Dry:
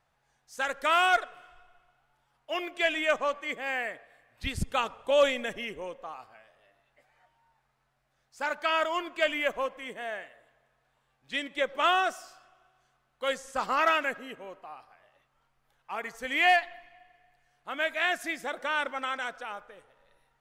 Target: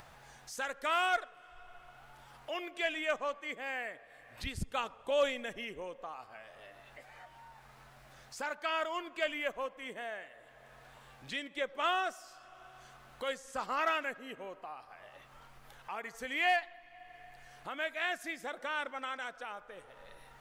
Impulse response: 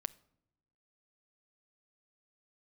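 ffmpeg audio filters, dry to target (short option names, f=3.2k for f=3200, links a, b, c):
-af "acompressor=mode=upward:threshold=-29dB:ratio=2.5,volume=-7dB"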